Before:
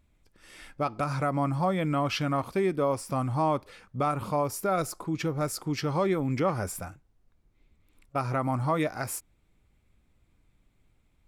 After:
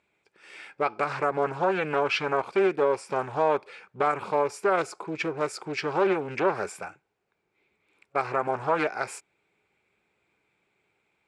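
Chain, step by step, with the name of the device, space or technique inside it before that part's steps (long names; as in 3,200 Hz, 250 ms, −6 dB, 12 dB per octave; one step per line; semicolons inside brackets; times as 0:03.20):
full-range speaker at full volume (highs frequency-modulated by the lows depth 0.43 ms; loudspeaker in its box 250–8,200 Hz, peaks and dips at 260 Hz −9 dB, 410 Hz +8 dB, 840 Hz +6 dB, 1,500 Hz +6 dB, 2,400 Hz +10 dB, 6,100 Hz −4 dB)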